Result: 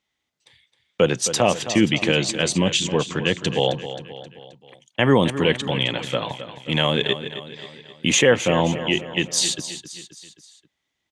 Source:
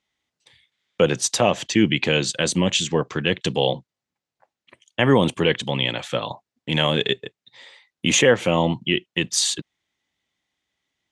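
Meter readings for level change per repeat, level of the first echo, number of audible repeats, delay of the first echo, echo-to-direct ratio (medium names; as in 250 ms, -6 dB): -5.5 dB, -12.0 dB, 4, 265 ms, -10.5 dB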